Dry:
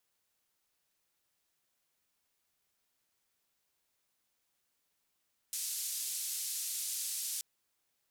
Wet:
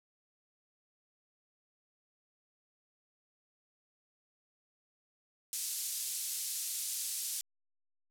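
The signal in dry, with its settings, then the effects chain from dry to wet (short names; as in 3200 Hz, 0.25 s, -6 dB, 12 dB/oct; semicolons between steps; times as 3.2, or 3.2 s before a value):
noise band 5100–12000 Hz, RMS -38 dBFS 1.88 s
level-crossing sampler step -57 dBFS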